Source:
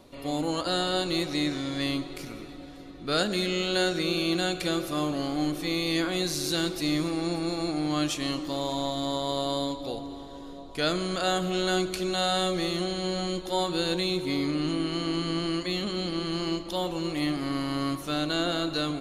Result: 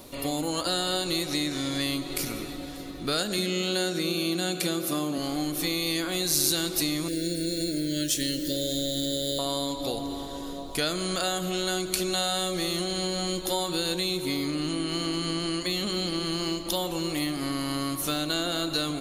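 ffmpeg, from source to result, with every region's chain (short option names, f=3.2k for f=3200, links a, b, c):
-filter_complex "[0:a]asettb=1/sr,asplit=3[a][b][c];[a]atrim=end=3.384[d];[b]atrim=start=3.38:end=5.18,asetpts=PTS-STARTPTS,afade=t=in:d=0.004:c=qsin,afade=t=out:st=1.796:d=0.004:c=qsin,highpass=f=170:w=0.5412,highpass=f=170:w=1.3066,lowshelf=f=240:g=11[e];[c]atrim=start=5.176[f];[d][e]acrossfade=d=0.004:c1=hsin:c2=qsin[g];[g][f]acrossfade=d=0.004:c1=qsin:c2=hsin,asettb=1/sr,asplit=3[h][i][j];[h]atrim=end=7.084[k];[i]atrim=start=7.08:end=9.39,asetpts=PTS-STARTPTS,afade=t=in:d=0.004:c=qsin,afade=t=out:st=2.306:d=0.004:c=qsin,equalizer=f=2.4k:w=4.5:g=-8.5,acrusher=bits=8:mix=0:aa=0.5,asuperstop=centerf=960:order=12:qfactor=1.1[l];[j]atrim=start=9.386[m];[k][l]acrossfade=d=0.004:c1=hsin:c2=qsin[n];[n][m]acrossfade=d=0.004:c1=qsin:c2=hsin,acompressor=threshold=-32dB:ratio=6,aemphasis=mode=production:type=50fm,volume=6dB"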